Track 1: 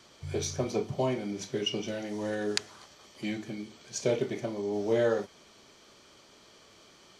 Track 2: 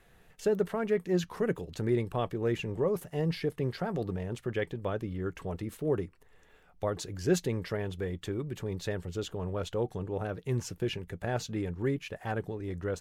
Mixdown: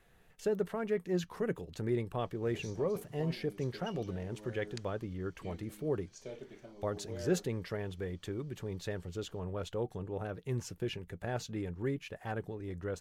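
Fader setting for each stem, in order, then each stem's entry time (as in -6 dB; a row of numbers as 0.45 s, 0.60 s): -18.0 dB, -4.5 dB; 2.20 s, 0.00 s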